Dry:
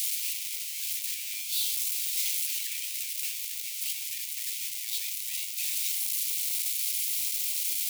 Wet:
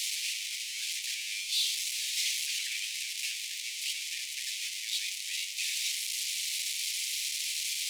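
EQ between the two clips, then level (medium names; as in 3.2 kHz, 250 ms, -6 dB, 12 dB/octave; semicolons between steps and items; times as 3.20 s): distance through air 74 m; +6.0 dB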